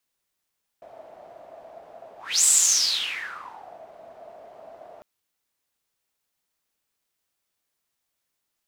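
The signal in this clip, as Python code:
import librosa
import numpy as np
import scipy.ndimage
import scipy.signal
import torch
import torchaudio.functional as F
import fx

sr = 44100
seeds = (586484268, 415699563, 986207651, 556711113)

y = fx.whoosh(sr, seeds[0], length_s=4.2, peak_s=1.63, rise_s=0.29, fall_s=1.39, ends_hz=660.0, peak_hz=7800.0, q=9.1, swell_db=29.0)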